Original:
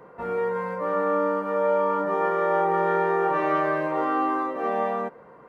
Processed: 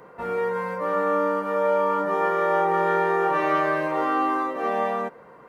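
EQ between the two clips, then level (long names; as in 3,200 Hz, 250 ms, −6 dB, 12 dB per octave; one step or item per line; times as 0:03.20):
high-shelf EQ 2,300 Hz +8.5 dB
0.0 dB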